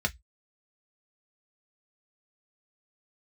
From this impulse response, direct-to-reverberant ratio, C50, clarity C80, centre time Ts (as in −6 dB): 3.0 dB, 26.5 dB, 40.0 dB, 4 ms